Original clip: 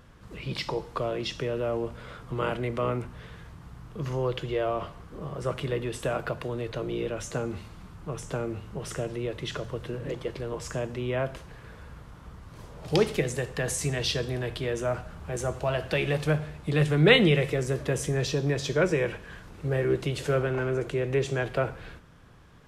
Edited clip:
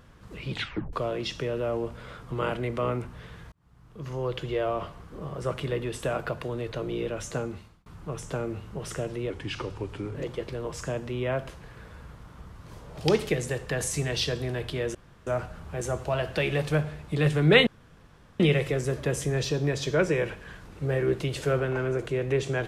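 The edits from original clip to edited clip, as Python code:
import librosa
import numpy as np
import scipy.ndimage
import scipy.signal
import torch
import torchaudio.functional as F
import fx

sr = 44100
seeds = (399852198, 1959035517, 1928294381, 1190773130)

y = fx.edit(x, sr, fx.tape_stop(start_s=0.51, length_s=0.42),
    fx.fade_in_span(start_s=3.52, length_s=0.94),
    fx.fade_out_span(start_s=7.39, length_s=0.47),
    fx.speed_span(start_s=9.3, length_s=0.72, speed=0.85),
    fx.insert_room_tone(at_s=14.82, length_s=0.32),
    fx.insert_room_tone(at_s=17.22, length_s=0.73), tone=tone)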